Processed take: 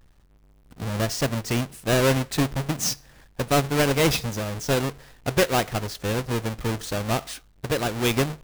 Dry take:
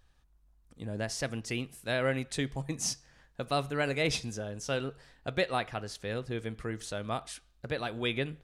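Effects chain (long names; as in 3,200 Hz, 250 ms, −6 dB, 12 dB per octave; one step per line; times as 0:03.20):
each half-wave held at its own peak
level +4.5 dB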